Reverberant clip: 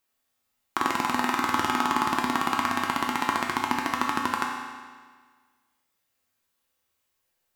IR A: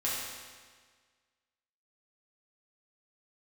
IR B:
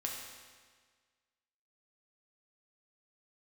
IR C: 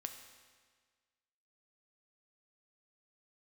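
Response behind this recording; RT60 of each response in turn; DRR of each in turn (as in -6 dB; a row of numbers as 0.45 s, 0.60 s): B; 1.6 s, 1.6 s, 1.6 s; -7.5 dB, -1.5 dB, 5.5 dB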